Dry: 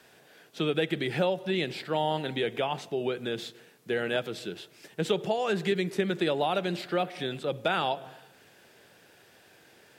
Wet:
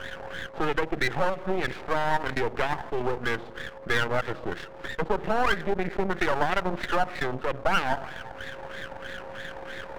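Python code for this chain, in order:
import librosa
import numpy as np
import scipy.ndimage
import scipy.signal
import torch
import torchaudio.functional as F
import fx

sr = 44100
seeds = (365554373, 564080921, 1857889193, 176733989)

y = fx.filter_lfo_lowpass(x, sr, shape='sine', hz=3.1, low_hz=860.0, high_hz=1900.0, q=6.2)
y = np.maximum(y, 0.0)
y = y + 10.0 ** (-59.0 / 20.0) * np.sin(2.0 * np.pi * 540.0 * np.arange(len(y)) / sr)
y = fx.transient(y, sr, attack_db=1, sustain_db=-11)
y = fx.env_flatten(y, sr, amount_pct=50)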